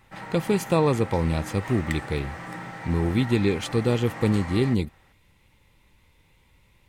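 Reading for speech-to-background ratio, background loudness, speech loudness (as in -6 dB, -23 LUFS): 12.0 dB, -37.0 LUFS, -25.0 LUFS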